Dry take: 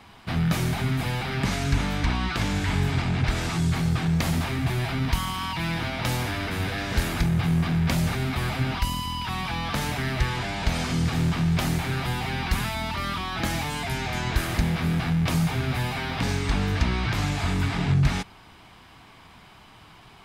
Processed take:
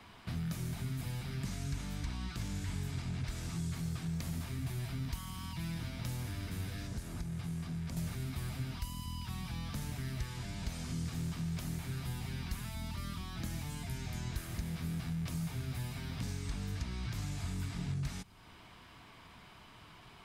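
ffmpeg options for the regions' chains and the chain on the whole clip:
ffmpeg -i in.wav -filter_complex "[0:a]asettb=1/sr,asplit=3[link_01][link_02][link_03];[link_01]atrim=end=6.874[link_04];[link_02]atrim=start=6.87:end=7.97,asetpts=PTS-STARTPTS,afade=type=in:duration=0.004:curve=qsin,afade=type=out:start_time=1.096:duration=0.004:curve=qsin,lowpass=11000,acrossover=split=1300|5100[link_05][link_06][link_07];[link_05]acompressor=threshold=-29dB:ratio=4[link_08];[link_06]acompressor=threshold=-47dB:ratio=4[link_09];[link_07]acompressor=threshold=-48dB:ratio=4[link_10];[link_08][link_09][link_10]amix=inputs=3:normalize=0[link_11];[link_03]atrim=start=7.966[link_12];[link_04][link_11]acrossfade=duration=0.004:curve1=hsin:curve2=qsin[link_13];[link_13][link_12]acrossfade=duration=0.004:curve1=qsin:curve2=hsin,bandreject=frequency=800:width=12,acrossover=split=230|5400[link_14][link_15][link_16];[link_14]acompressor=threshold=-31dB:ratio=4[link_17];[link_15]acompressor=threshold=-46dB:ratio=4[link_18];[link_16]acompressor=threshold=-45dB:ratio=4[link_19];[link_17][link_18][link_19]amix=inputs=3:normalize=0,volume=-5.5dB" out.wav

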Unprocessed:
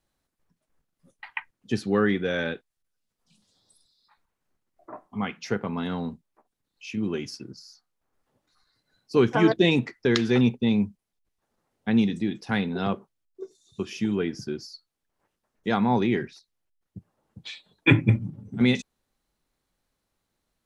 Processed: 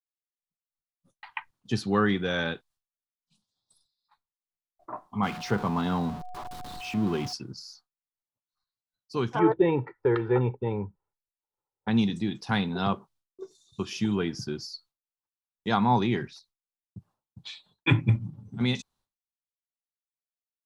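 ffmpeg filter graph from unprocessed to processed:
ffmpeg -i in.wav -filter_complex "[0:a]asettb=1/sr,asplit=3[link_01][link_02][link_03];[link_01]atrim=end=5.234[link_04];[link_02]atrim=start=5.23:end=7.33,asetpts=PTS-STARTPTS,afade=type=in:duration=0.004:curve=qsin,afade=type=out:start_time=2.096:duration=0.004:curve=qsin,aeval=exprs='val(0)+0.5*0.0178*sgn(val(0))':channel_layout=same,highshelf=frequency=3500:gain=-11,aeval=exprs='val(0)+0.00631*sin(2*PI*730*n/s)':channel_layout=same[link_05];[link_03]atrim=start=7.326[link_06];[link_04][link_05]acrossfade=duration=0.004:curve1=hsin:curve2=qsin[link_07];[link_07][link_06]acrossfade=duration=0.004:curve1=qsin:curve2=hsin,asettb=1/sr,asplit=3[link_08][link_09][link_10];[link_08]atrim=end=9.394[link_11];[link_09]atrim=start=9.39:end=11.88,asetpts=PTS-STARTPTS,afade=type=in:duration=0.004:curve=qsin,afade=type=out:start_time=2.486:duration=0.004:curve=qsin,lowpass=frequency=2000:width=0.5412,lowpass=frequency=2000:width=1.3066,equalizer=frequency=520:width_type=o:width=2.4:gain=7,aecho=1:1:2.2:0.76,atrim=end_sample=109809[link_12];[link_10]atrim=start=11.876[link_13];[link_11][link_12]acrossfade=duration=0.004:curve1=hsin:curve2=qsin[link_14];[link_14][link_13]acrossfade=duration=0.004:curve1=qsin:curve2=hsin,agate=range=-33dB:threshold=-55dB:ratio=3:detection=peak,equalizer=frequency=125:width_type=o:width=1:gain=3,equalizer=frequency=250:width_type=o:width=1:gain=-3,equalizer=frequency=500:width_type=o:width=1:gain=-5,equalizer=frequency=1000:width_type=o:width=1:gain=6,equalizer=frequency=2000:width_type=o:width=1:gain=-5,equalizer=frequency=4000:width_type=o:width=1:gain=4,dynaudnorm=framelen=120:gausssize=21:maxgain=11.5dB,volume=-9dB" out.wav

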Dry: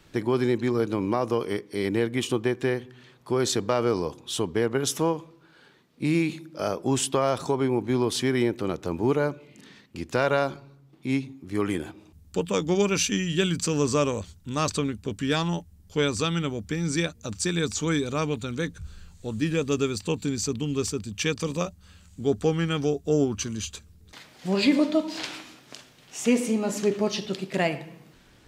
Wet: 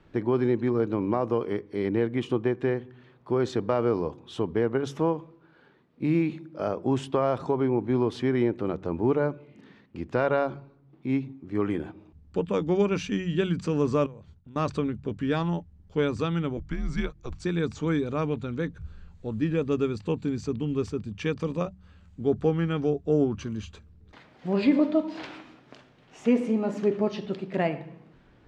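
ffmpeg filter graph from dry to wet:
ffmpeg -i in.wav -filter_complex "[0:a]asettb=1/sr,asplit=3[link_01][link_02][link_03];[link_01]atrim=end=14.064[link_04];[link_02]atrim=start=14.06:end=14.56,asetpts=PTS-STARTPTS,afade=type=in:duration=0.004:curve=qsin,afade=type=out:start_time=0.496:duration=0.004:curve=qsin,agate=range=-33dB:threshold=-48dB:ratio=3:release=100:detection=peak,acompressor=threshold=-44dB:ratio=6:attack=3.2:release=140:knee=1:detection=peak,highshelf=frequency=10000:gain=-9[link_05];[link_03]atrim=start=14.556[link_06];[link_04][link_05]acrossfade=duration=0.004:curve1=hsin:curve2=qsin[link_07];[link_07][link_06]acrossfade=duration=0.004:curve1=qsin:curve2=hsin,asettb=1/sr,asplit=3[link_08][link_09][link_10];[link_08]atrim=end=16.574[link_11];[link_09]atrim=start=16.57:end=17.44,asetpts=PTS-STARTPTS,afade=type=in:duration=0.004:curve=qsin,afade=type=out:start_time=0.866:duration=0.004:curve=qsin,afreqshift=-130,tremolo=f=250:d=0.182[link_12];[link_10]atrim=start=17.436[link_13];[link_11][link_12]acrossfade=duration=0.004:curve1=hsin:curve2=qsin[link_14];[link_14][link_13]acrossfade=duration=0.004:curve1=qsin:curve2=hsin,lowpass=frequency=1600:poles=1,aemphasis=mode=reproduction:type=50kf,bandreject=frequency=46.65:width_type=h:width=4,bandreject=frequency=93.3:width_type=h:width=4,bandreject=frequency=139.95:width_type=h:width=4,bandreject=frequency=186.6:width_type=h:width=4" out.wav

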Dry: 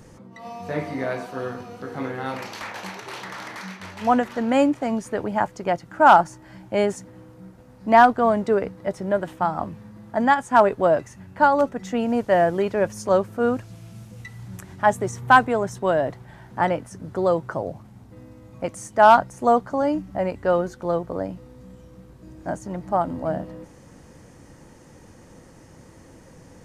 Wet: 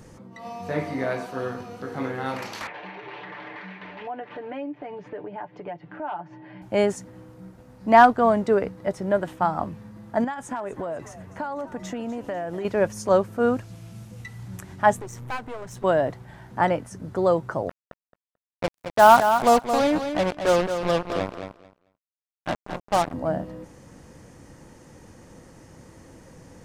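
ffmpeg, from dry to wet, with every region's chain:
ffmpeg -i in.wav -filter_complex "[0:a]asettb=1/sr,asplit=3[link_01][link_02][link_03];[link_01]atrim=end=2.674[link_04];[link_02]atrim=start=2.67:end=6.62,asetpts=PTS-STARTPTS,afade=type=in:duration=0.004:curve=qsin,afade=type=out:start_time=3.946:duration=0.004:curve=qsin,highpass=frequency=140:width=0.5412,highpass=frequency=140:width=1.3066,equalizer=frequency=240:width_type=q:width=4:gain=-8,equalizer=frequency=360:width_type=q:width=4:gain=5,equalizer=frequency=1300:width_type=q:width=4:gain=-7,lowpass=frequency=3000:width=0.5412,lowpass=frequency=3000:width=1.3066,aecho=1:1:6.8:0.75,atrim=end_sample=174195,acompressor=threshold=-36dB:ratio=3:attack=3.2:release=140:knee=1:detection=peak[link_05];[link_03]atrim=start=6.616[link_06];[link_04][link_05]acrossfade=duration=0.004:curve1=hsin:curve2=qsin[link_07];[link_07][link_06]acrossfade=duration=0.004:curve1=qsin:curve2=hsin,asettb=1/sr,asplit=3[link_08][link_09][link_10];[link_08]atrim=end=10.244[link_11];[link_09]atrim=start=10.24:end=12.65,asetpts=PTS-STARTPTS,afade=type=in:duration=0.004:curve=qsin,afade=type=out:start_time=2.406:duration=0.004:curve=qsin,bandreject=frequency=4600:width=28,acompressor=threshold=-26dB:ratio=16:attack=3.2:release=140:knee=1:detection=peak,asplit=5[link_12][link_13][link_14][link_15][link_16];[link_13]adelay=247,afreqshift=54,volume=-15.5dB[link_17];[link_14]adelay=494,afreqshift=108,volume=-21.9dB[link_18];[link_15]adelay=741,afreqshift=162,volume=-28.3dB[link_19];[link_16]adelay=988,afreqshift=216,volume=-34.6dB[link_20];[link_12][link_17][link_18][link_19][link_20]amix=inputs=5:normalize=0,atrim=end_sample=106281[link_21];[link_10]atrim=start=12.646[link_22];[link_11][link_21]acrossfade=duration=0.004:curve1=hsin:curve2=qsin[link_23];[link_23][link_22]acrossfade=duration=0.004:curve1=qsin:curve2=hsin,asettb=1/sr,asplit=3[link_24][link_25][link_26];[link_24]atrim=end=14.964[link_27];[link_25]atrim=start=14.96:end=15.84,asetpts=PTS-STARTPTS,afade=type=in:duration=0.004:curve=qsin,afade=type=out:start_time=0.876:duration=0.004:curve=qsin,acompressor=threshold=-34dB:ratio=2:attack=3.2:release=140:knee=1:detection=peak,aeval=exprs='clip(val(0),-1,0.00944)':channel_layout=same[link_28];[link_26]atrim=start=15.836[link_29];[link_27][link_28]acrossfade=duration=0.004:curve1=hsin:curve2=qsin[link_30];[link_30][link_29]acrossfade=duration=0.004:curve1=qsin:curve2=hsin,asettb=1/sr,asplit=3[link_31][link_32][link_33];[link_31]atrim=end=17.694[link_34];[link_32]atrim=start=17.69:end=23.14,asetpts=PTS-STARTPTS,afade=type=in:duration=0.004:curve=qsin,afade=type=out:start_time=5.446:duration=0.004:curve=qsin,acrusher=bits=3:mix=0:aa=0.5,aecho=1:1:220|440|660:0.398|0.0637|0.0102,atrim=end_sample=240345[link_35];[link_33]atrim=start=23.136[link_36];[link_34][link_35]acrossfade=duration=0.004:curve1=hsin:curve2=qsin[link_37];[link_37][link_36]acrossfade=duration=0.004:curve1=qsin:curve2=hsin" out.wav

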